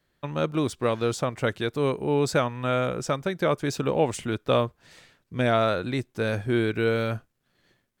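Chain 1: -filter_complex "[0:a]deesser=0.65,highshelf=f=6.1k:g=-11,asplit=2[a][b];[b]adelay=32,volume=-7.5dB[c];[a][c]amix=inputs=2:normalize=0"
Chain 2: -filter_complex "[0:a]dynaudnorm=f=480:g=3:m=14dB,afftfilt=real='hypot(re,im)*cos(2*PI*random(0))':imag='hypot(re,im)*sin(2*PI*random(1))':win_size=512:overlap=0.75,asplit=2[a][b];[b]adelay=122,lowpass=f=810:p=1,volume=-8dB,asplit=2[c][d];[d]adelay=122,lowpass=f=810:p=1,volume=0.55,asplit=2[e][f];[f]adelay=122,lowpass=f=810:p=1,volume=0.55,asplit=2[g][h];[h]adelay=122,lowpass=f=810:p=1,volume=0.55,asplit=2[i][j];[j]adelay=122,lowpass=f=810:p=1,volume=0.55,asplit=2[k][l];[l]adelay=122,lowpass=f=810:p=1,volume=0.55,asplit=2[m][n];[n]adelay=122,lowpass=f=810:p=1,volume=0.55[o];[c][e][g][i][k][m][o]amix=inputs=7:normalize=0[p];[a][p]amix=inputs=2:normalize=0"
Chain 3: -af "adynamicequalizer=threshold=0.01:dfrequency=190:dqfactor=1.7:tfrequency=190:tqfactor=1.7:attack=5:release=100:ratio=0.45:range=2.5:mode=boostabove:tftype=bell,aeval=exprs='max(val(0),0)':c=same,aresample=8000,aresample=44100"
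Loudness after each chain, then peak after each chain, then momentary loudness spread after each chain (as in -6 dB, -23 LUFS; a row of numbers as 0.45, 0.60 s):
-26.0, -22.5, -30.0 LUFS; -9.0, -5.5, -9.5 dBFS; 6, 12, 6 LU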